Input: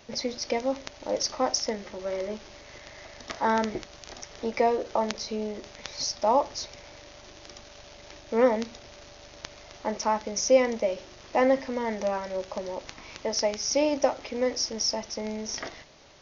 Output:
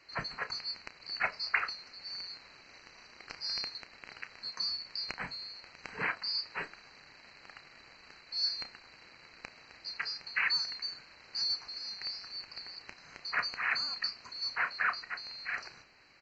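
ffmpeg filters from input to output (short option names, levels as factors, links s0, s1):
-filter_complex "[0:a]afftfilt=real='real(if(lt(b,736),b+184*(1-2*mod(floor(b/184),2)),b),0)':imag='imag(if(lt(b,736),b+184*(1-2*mod(floor(b/184),2)),b),0)':win_size=2048:overlap=0.75,lowpass=f=2600:t=q:w=2.2,asplit=2[s0][s1];[s1]adelay=32,volume=0.237[s2];[s0][s2]amix=inputs=2:normalize=0,volume=0.531"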